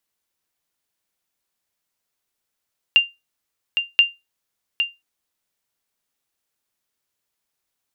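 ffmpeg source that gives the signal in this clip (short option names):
-f lavfi -i "aevalsrc='0.562*(sin(2*PI*2790*mod(t,1.03))*exp(-6.91*mod(t,1.03)/0.21)+0.422*sin(2*PI*2790*max(mod(t,1.03)-0.81,0))*exp(-6.91*max(mod(t,1.03)-0.81,0)/0.21))':d=2.06:s=44100"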